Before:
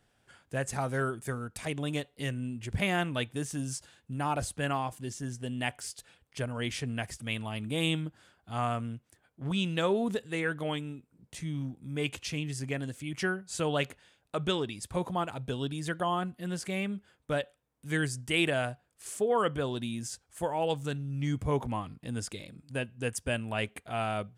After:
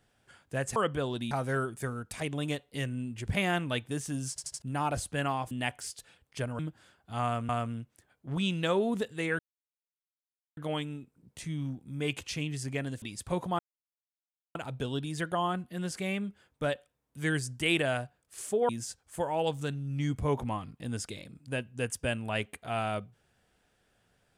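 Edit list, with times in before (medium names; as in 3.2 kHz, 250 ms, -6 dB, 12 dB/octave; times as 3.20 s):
3.75 s: stutter in place 0.08 s, 4 plays
4.96–5.51 s: delete
6.59–7.98 s: delete
8.63–8.88 s: loop, 2 plays
10.53 s: insert silence 1.18 s
12.98–14.66 s: delete
15.23 s: insert silence 0.96 s
19.37–19.92 s: move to 0.76 s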